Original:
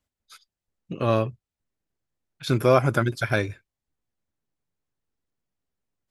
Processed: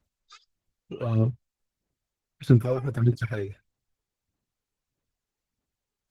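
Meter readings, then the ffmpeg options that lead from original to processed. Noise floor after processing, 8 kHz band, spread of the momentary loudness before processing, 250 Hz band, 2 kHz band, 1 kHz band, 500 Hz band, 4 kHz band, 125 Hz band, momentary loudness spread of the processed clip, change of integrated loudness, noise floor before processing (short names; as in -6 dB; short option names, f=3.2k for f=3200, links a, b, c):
under -85 dBFS, under -10 dB, 14 LU, 0.0 dB, -11.5 dB, -14.0 dB, -7.5 dB, under -10 dB, +3.0 dB, 17 LU, -2.0 dB, under -85 dBFS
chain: -filter_complex "[0:a]acrossover=split=350[a][b];[b]acompressor=threshold=-40dB:ratio=2.5[c];[a][c]amix=inputs=2:normalize=0,aphaser=in_gain=1:out_gain=1:delay=2.5:decay=0.69:speed=1.6:type=sinusoidal,volume=-3dB" -ar 48000 -c:a libopus -b:a 16k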